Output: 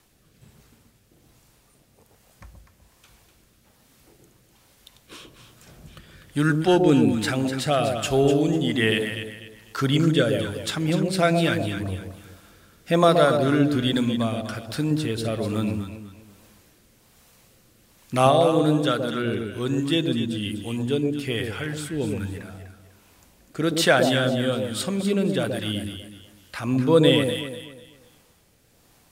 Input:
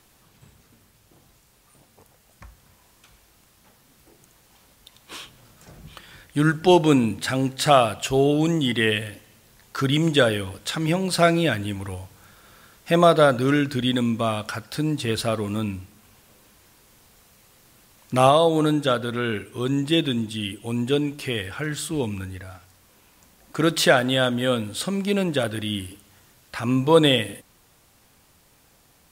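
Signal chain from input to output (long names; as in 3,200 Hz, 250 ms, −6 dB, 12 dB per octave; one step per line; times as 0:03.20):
rotating-speaker cabinet horn 1.2 Hz
delay that swaps between a low-pass and a high-pass 124 ms, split 810 Hz, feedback 55%, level −3.5 dB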